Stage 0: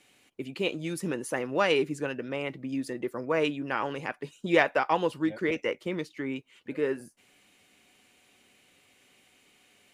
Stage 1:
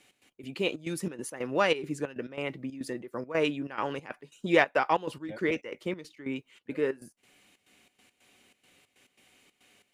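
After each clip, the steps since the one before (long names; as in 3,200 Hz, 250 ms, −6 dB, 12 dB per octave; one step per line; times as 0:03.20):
gate pattern "x.x.xxx.x" 139 BPM −12 dB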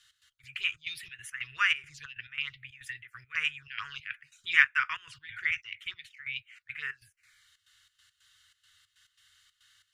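drawn EQ curve 100 Hz 0 dB, 3,400 Hz +11 dB, 10,000 Hz −4 dB
phaser swept by the level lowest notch 390 Hz, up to 4,100 Hz, full sweep at −20 dBFS
inverse Chebyshev band-stop filter 180–850 Hz, stop band 40 dB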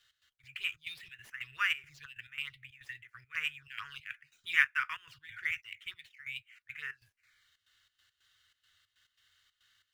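running median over 5 samples
level −4.5 dB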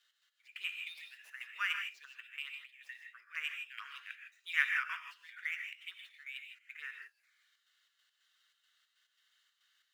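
inverse Chebyshev high-pass filter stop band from 180 Hz, stop band 50 dB
reverb whose tail is shaped and stops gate 180 ms rising, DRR 4.5 dB
level −4.5 dB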